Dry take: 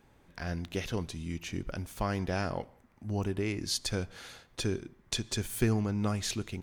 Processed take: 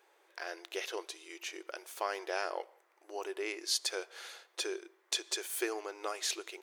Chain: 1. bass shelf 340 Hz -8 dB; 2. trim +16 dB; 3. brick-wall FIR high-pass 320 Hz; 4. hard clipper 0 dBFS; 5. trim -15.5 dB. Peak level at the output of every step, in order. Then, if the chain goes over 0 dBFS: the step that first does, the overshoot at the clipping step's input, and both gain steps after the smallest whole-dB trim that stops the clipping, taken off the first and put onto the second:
-12.5 dBFS, +3.5 dBFS, +3.5 dBFS, 0.0 dBFS, -15.5 dBFS; step 2, 3.5 dB; step 2 +12 dB, step 5 -11.5 dB

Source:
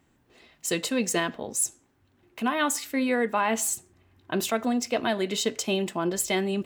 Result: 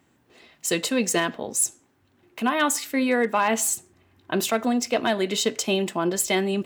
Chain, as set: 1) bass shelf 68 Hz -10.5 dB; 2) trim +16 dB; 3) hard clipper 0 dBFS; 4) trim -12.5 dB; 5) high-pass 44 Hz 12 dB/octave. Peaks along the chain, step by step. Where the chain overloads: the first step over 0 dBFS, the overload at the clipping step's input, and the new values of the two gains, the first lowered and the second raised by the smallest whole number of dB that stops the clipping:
-12.0 dBFS, +4.0 dBFS, 0.0 dBFS, -12.5 dBFS, -11.0 dBFS; step 2, 4.0 dB; step 2 +12 dB, step 4 -8.5 dB

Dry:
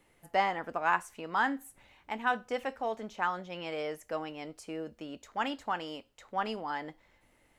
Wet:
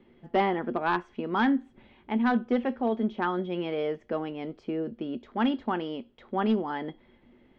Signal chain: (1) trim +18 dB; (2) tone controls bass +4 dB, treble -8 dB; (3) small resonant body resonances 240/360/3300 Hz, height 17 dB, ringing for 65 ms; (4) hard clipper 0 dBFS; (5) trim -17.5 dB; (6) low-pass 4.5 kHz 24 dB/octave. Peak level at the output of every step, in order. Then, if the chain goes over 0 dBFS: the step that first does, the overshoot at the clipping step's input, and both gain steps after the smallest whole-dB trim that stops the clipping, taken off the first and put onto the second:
+6.0 dBFS, +6.0 dBFS, +7.5 dBFS, 0.0 dBFS, -17.5 dBFS, -16.5 dBFS; step 1, 7.5 dB; step 1 +10 dB, step 5 -9.5 dB

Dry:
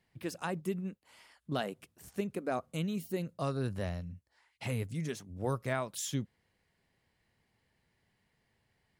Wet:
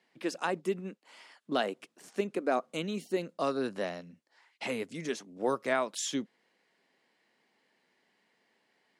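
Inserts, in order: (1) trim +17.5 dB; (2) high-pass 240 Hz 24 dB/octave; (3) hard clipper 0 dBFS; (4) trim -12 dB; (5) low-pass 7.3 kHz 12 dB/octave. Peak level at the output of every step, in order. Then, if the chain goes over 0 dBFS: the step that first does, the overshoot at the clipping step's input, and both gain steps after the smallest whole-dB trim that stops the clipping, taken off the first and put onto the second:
-2.5 dBFS, -2.0 dBFS, -2.0 dBFS, -14.0 dBFS, -14.0 dBFS; nothing clips

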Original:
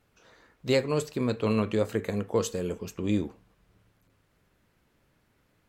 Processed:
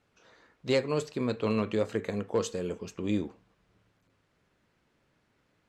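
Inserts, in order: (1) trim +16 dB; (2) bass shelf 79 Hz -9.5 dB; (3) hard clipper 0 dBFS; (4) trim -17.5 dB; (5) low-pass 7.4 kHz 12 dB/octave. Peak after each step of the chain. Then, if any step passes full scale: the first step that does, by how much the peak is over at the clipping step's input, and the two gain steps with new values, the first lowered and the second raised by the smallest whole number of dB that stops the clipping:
+3.5 dBFS, +3.5 dBFS, 0.0 dBFS, -17.5 dBFS, -17.0 dBFS; step 1, 3.5 dB; step 1 +12 dB, step 4 -13.5 dB

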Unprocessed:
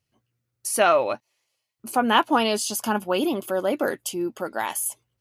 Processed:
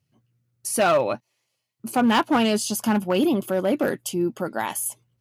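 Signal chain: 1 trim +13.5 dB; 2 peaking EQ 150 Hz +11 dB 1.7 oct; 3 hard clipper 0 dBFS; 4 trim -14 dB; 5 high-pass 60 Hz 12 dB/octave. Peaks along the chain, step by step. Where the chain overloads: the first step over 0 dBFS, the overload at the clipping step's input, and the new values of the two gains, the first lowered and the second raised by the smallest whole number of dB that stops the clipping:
+8.0 dBFS, +8.5 dBFS, 0.0 dBFS, -14.0 dBFS, -11.5 dBFS; step 1, 8.5 dB; step 1 +4.5 dB, step 4 -5 dB

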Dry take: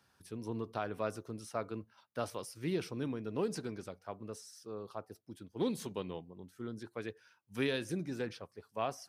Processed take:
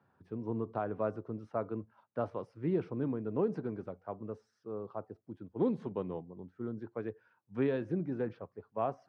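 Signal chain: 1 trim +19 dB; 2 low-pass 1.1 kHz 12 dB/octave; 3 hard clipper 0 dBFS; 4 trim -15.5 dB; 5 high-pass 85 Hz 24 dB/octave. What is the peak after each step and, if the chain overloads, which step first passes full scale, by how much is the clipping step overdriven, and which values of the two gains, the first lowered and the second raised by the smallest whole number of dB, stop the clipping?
-3.0 dBFS, -4.0 dBFS, -4.0 dBFS, -19.5 dBFS, -19.5 dBFS; nothing clips

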